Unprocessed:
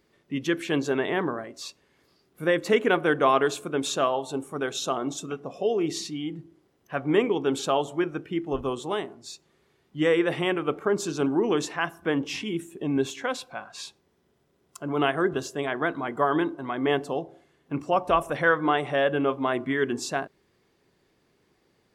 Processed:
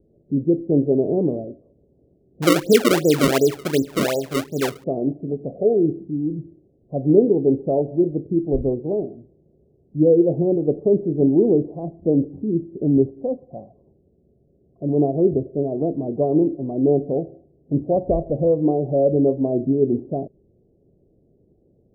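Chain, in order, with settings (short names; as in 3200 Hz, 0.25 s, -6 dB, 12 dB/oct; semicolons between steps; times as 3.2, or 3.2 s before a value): steep low-pass 640 Hz 48 dB/oct; low shelf 160 Hz +8.5 dB; 2.42–4.84 decimation with a swept rate 30×, swing 160% 2.7 Hz; gain +6.5 dB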